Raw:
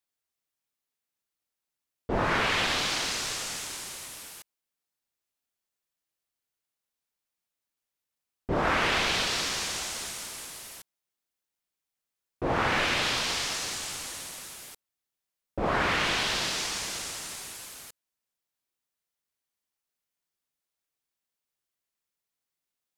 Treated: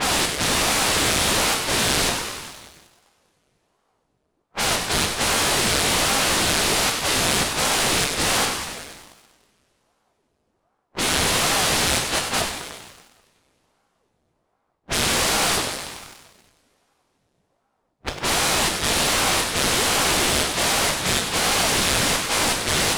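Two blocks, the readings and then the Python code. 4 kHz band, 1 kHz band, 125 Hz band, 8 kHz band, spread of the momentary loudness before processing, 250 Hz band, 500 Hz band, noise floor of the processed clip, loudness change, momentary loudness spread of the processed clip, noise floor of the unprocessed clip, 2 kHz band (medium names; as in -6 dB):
+11.0 dB, +9.0 dB, +10.5 dB, +14.5 dB, 17 LU, +10.0 dB, +9.5 dB, -72 dBFS, +9.0 dB, 10 LU, under -85 dBFS, +8.5 dB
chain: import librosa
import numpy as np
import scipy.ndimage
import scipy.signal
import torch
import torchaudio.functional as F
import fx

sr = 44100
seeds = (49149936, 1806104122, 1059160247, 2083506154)

p1 = fx.bin_compress(x, sr, power=0.2)
p2 = fx.peak_eq(p1, sr, hz=1000.0, db=-4.5, octaves=2.3)
p3 = fx.doubler(p2, sr, ms=17.0, db=-4.0)
p4 = fx.gate_flip(p3, sr, shuts_db=-21.0, range_db=-42)
p5 = fx.peak_eq(p4, sr, hz=10000.0, db=6.5, octaves=0.76)
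p6 = fx.env_lowpass(p5, sr, base_hz=640.0, full_db=-31.5)
p7 = p6 + fx.echo_thinned(p6, sr, ms=97, feedback_pct=71, hz=170.0, wet_db=-9.5, dry=0)
p8 = fx.rev_double_slope(p7, sr, seeds[0], early_s=0.49, late_s=3.6, knee_db=-21, drr_db=2.0)
p9 = fx.backlash(p8, sr, play_db=-42.0)
p10 = p8 + F.gain(torch.from_numpy(p9), -8.5).numpy()
p11 = fx.leveller(p10, sr, passes=2)
p12 = fx.ring_lfo(p11, sr, carrier_hz=440.0, swing_pct=85, hz=1.3)
y = F.gain(torch.from_numpy(p12), 3.5).numpy()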